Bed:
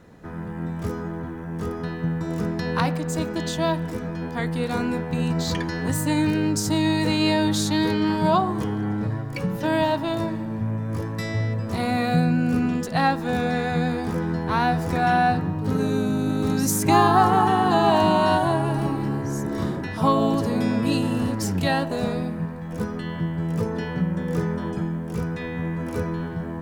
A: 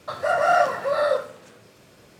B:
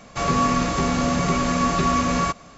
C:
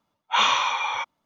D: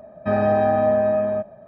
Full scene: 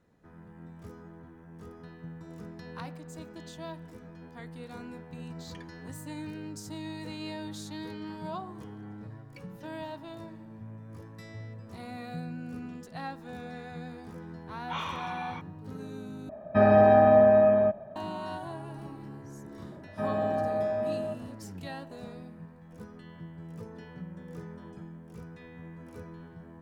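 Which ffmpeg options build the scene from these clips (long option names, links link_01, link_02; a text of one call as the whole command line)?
ffmpeg -i bed.wav -i cue0.wav -i cue1.wav -i cue2.wav -i cue3.wav -filter_complex "[4:a]asplit=2[link_01][link_02];[0:a]volume=-18dB[link_03];[3:a]lowpass=frequency=1900:poles=1[link_04];[link_03]asplit=2[link_05][link_06];[link_05]atrim=end=16.294[link_07];[link_01]atrim=end=1.67[link_08];[link_06]atrim=start=17.956[link_09];[link_04]atrim=end=1.25,asetpts=PTS-STARTPTS,volume=-13dB,afade=type=in:duration=0.004:curve=hsin,afade=type=out:start_time=1.246:duration=0.004:curve=hsin,adelay=14370[link_10];[link_02]atrim=end=1.67,asetpts=PTS-STARTPTS,volume=-11dB,afade=type=in:duration=0.004:curve=hsin,afade=type=out:start_time=1.666:duration=0.004:curve=hsin,adelay=869652S[link_11];[link_07][link_08]acrossfade=duration=0.004:curve1=hsin:curve2=hsin[link_12];[link_12][link_09]acrossfade=duration=0.004:curve1=hsin:curve2=hsin[link_13];[link_13][link_10][link_11]amix=inputs=3:normalize=0" out.wav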